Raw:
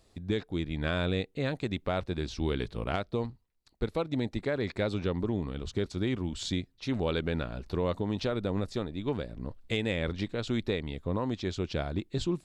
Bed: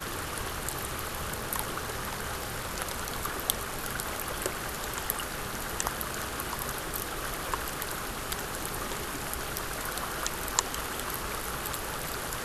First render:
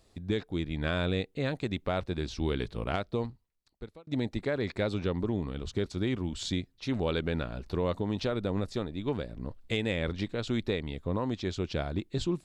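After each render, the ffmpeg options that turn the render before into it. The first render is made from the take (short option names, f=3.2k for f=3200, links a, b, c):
-filter_complex "[0:a]asplit=2[a][b];[a]atrim=end=4.07,asetpts=PTS-STARTPTS,afade=t=out:st=3.22:d=0.85[c];[b]atrim=start=4.07,asetpts=PTS-STARTPTS,afade=t=in:d=0.004:c=hsin[d];[c][d]concat=n=2:v=0:a=1"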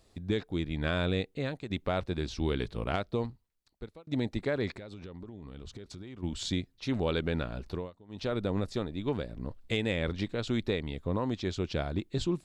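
-filter_complex "[0:a]asplit=3[a][b][c];[a]afade=t=out:st=4.74:d=0.02[d];[b]acompressor=threshold=-40dB:ratio=12:attack=3.2:release=140:knee=1:detection=peak,afade=t=in:st=4.74:d=0.02,afade=t=out:st=6.22:d=0.02[e];[c]afade=t=in:st=6.22:d=0.02[f];[d][e][f]amix=inputs=3:normalize=0,asplit=4[g][h][i][j];[g]atrim=end=1.7,asetpts=PTS-STARTPTS,afade=t=out:st=1.29:d=0.41:silence=0.334965[k];[h]atrim=start=1.7:end=7.91,asetpts=PTS-STARTPTS,afade=t=in:d=0.004:c=hsin:silence=0.334965,afade=t=out:st=5.96:d=0.25:silence=0.0630957[l];[i]atrim=start=7.91:end=8.08,asetpts=PTS-STARTPTS,volume=-24dB[m];[j]atrim=start=8.08,asetpts=PTS-STARTPTS,afade=t=in:d=0.25:silence=0.0630957[n];[k][l][m][n]concat=n=4:v=0:a=1"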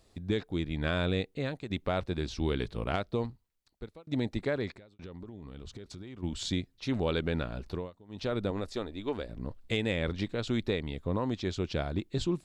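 -filter_complex "[0:a]asettb=1/sr,asplit=3[a][b][c];[a]atrim=end=8.504[d];[b]atrim=start=8.5:end=9.29,asetpts=PTS-STARTPTS,afade=t=in:d=0.004:c=qsin,afade=t=out:st=0.786:d=0.004:c=qsin,equalizer=f=140:t=o:w=0.97:g=-13[e];[c]atrim=start=9.286[f];[d][e]acrossfade=d=0.004:c1=hsin:c2=qsin[g];[g][f]acrossfade=d=0.004:c1=qsin:c2=hsin,asplit=2[h][i];[h]atrim=end=4.99,asetpts=PTS-STARTPTS,afade=t=out:st=4.52:d=0.47[j];[i]atrim=start=4.99,asetpts=PTS-STARTPTS,afade=t=in:d=0.004:c=hsin[k];[j][k]concat=n=2:v=0:a=1"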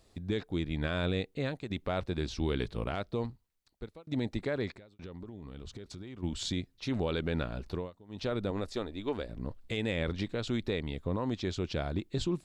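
-af "alimiter=limit=-22dB:level=0:latency=1:release=50"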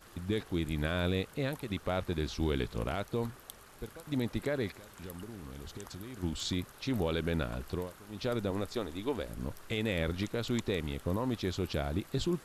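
-filter_complex "[1:a]volume=-20dB[a];[0:a][a]amix=inputs=2:normalize=0"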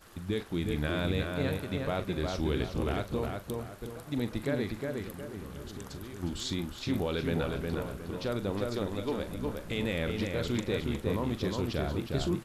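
-filter_complex "[0:a]asplit=2[a][b];[b]adelay=41,volume=-12dB[c];[a][c]amix=inputs=2:normalize=0,asplit=2[d][e];[e]adelay=361,lowpass=f=2.6k:p=1,volume=-3dB,asplit=2[f][g];[g]adelay=361,lowpass=f=2.6k:p=1,volume=0.38,asplit=2[h][i];[i]adelay=361,lowpass=f=2.6k:p=1,volume=0.38,asplit=2[j][k];[k]adelay=361,lowpass=f=2.6k:p=1,volume=0.38,asplit=2[l][m];[m]adelay=361,lowpass=f=2.6k:p=1,volume=0.38[n];[f][h][j][l][n]amix=inputs=5:normalize=0[o];[d][o]amix=inputs=2:normalize=0"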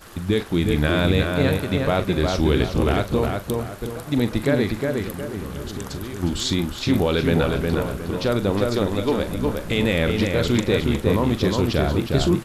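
-af "volume=11.5dB"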